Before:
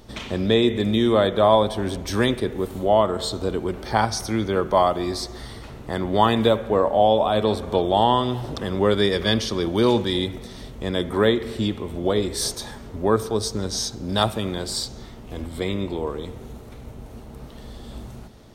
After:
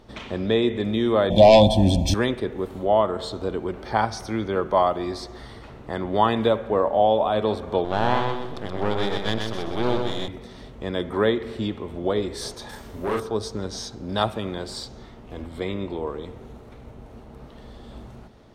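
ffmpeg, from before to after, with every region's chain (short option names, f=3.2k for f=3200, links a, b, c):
-filter_complex "[0:a]asettb=1/sr,asplit=3[a][b][c];[a]atrim=end=1.304[d];[b]atrim=start=1.3:end=2.14,asetpts=PTS-STARTPTS,afade=t=in:d=0.004:c=qsin,afade=t=out:st=0.836:d=0.004:c=qsin,aecho=1:1:1.2:0.99,atrim=end_sample=37044,aeval=exprs='0.841*sin(PI/2*2.24*val(0)/0.841)':c=same,asuperstop=centerf=1400:order=4:qfactor=0.59[e];[c]atrim=start=2.136[f];[d][e]acrossfade=d=0.004:c1=hsin:c2=qsin[g];[g][f]acrossfade=d=0.004:c1=qsin:c2=hsin,asettb=1/sr,asplit=3[h][i][j];[h]atrim=end=7.844[k];[i]atrim=start=7.84:end=10.28,asetpts=PTS-STARTPTS,afade=t=in:d=0.004:c=qsin,afade=t=out:st=2.436:d=0.004:c=qsin,aeval=exprs='max(val(0),0)':c=same,aecho=1:1:126|252|378|504:0.596|0.208|0.073|0.0255,atrim=end_sample=107604[l];[j]atrim=start=10.276[m];[k][l]acrossfade=d=0.004:c1=hsin:c2=qsin[n];[n][m]acrossfade=d=0.004:c1=qsin:c2=hsin,asettb=1/sr,asplit=3[o][p][q];[o]atrim=end=12.694[r];[p]atrim=start=12.69:end=13.2,asetpts=PTS-STARTPTS,afade=t=in:d=0.004:c=qsin,afade=t=out:st=0.506:d=0.004:c=qsin,aemphasis=mode=production:type=75fm,asoftclip=type=hard:threshold=-20.5dB,asplit=2[s][t];[t]adelay=40,volume=-3dB[u];[s][u]amix=inputs=2:normalize=0,atrim=end_sample=22491[v];[q]atrim=start=13.196[w];[r][v]acrossfade=d=0.004:c1=hsin:c2=qsin[x];[x][w]acrossfade=d=0.004:c1=qsin:c2=hsin,lowpass=f=2.2k:p=1,lowshelf=f=320:g=-5"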